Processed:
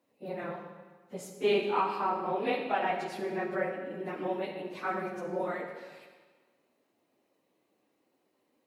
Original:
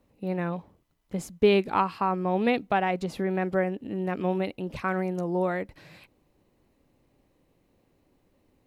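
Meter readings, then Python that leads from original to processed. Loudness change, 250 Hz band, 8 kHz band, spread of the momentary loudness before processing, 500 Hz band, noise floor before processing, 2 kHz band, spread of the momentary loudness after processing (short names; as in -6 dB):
-5.0 dB, -10.0 dB, n/a, 11 LU, -5.0 dB, -69 dBFS, -4.0 dB, 15 LU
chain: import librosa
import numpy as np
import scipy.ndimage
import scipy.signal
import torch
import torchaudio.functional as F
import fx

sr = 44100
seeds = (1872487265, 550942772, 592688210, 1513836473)

y = fx.phase_scramble(x, sr, seeds[0], window_ms=50)
y = scipy.signal.sosfilt(scipy.signal.butter(2, 320.0, 'highpass', fs=sr, output='sos'), y)
y = fx.rev_freeverb(y, sr, rt60_s=1.4, hf_ratio=0.9, predelay_ms=5, drr_db=4.0)
y = y * librosa.db_to_amplitude(-5.0)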